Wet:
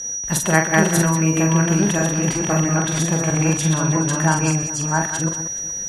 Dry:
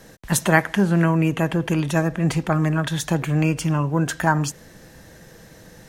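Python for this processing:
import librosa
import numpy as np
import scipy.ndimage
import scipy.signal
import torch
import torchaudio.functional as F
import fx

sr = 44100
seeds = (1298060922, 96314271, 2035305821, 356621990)

p1 = fx.reverse_delay(x, sr, ms=661, wet_db=-1.0)
p2 = p1 + 10.0 ** (-26.0 / 20.0) * np.sin(2.0 * np.pi * 5800.0 * np.arange(len(p1)) / sr)
p3 = scipy.signal.sosfilt(scipy.signal.ellip(4, 1.0, 40, 12000.0, 'lowpass', fs=sr, output='sos'), p2)
p4 = p3 + fx.echo_multitap(p3, sr, ms=(44, 125, 187, 424), db=(-5.0, -16.0, -10.5, -19.0), dry=0)
y = p4 * 10.0 ** (-1.0 / 20.0)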